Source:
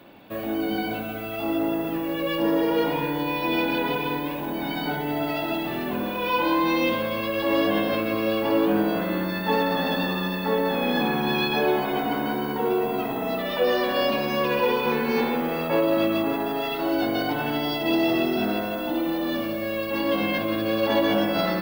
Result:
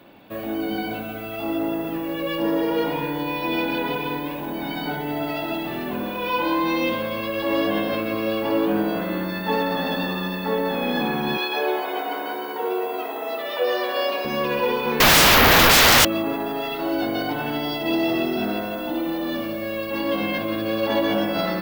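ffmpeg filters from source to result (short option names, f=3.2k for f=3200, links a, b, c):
-filter_complex "[0:a]asettb=1/sr,asplit=3[a][b][c];[a]atrim=end=11.374[d];[b]atrim=start=11.37:end=14.25,asetpts=PTS-STARTPTS,afade=t=in:d=0.004:c=qsin,afade=t=out:st=2.876:d=0.004:c=qsin,highpass=f=360:w=0.5412,highpass=f=360:w=1.3066[e];[c]atrim=start=14.246[f];[d][e]acrossfade=d=0.004:c1=hsin:c2=qsin[g];[g][f]acrossfade=d=0.004:c1=qsin:c2=hsin,asettb=1/sr,asplit=3[h][i][j];[h]atrim=end=15.004[k];[i]atrim=start=15:end=16.05,asetpts=PTS-STARTPTS,afade=t=in:d=0.004:c=qsin,afade=t=out:st=1.046:d=0.004:c=qsin,aeval=exprs='0.299*sin(PI/2*10*val(0)/0.299)':c=same[l];[j]atrim=start=16.046[m];[k][l]acrossfade=d=0.004:c1=hsin:c2=qsin[n];[n][m]acrossfade=d=0.004:c1=qsin:c2=hsin"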